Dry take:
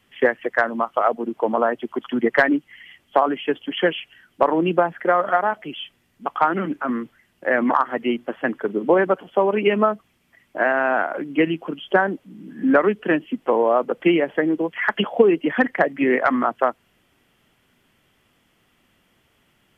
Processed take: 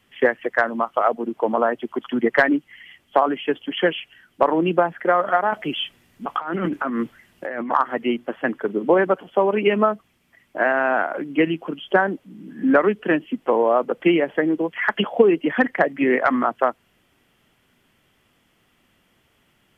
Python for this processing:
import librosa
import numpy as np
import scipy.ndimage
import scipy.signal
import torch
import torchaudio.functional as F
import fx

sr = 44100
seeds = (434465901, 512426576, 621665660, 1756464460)

y = fx.over_compress(x, sr, threshold_db=-27.0, ratio=-1.0, at=(5.51, 7.7), fade=0.02)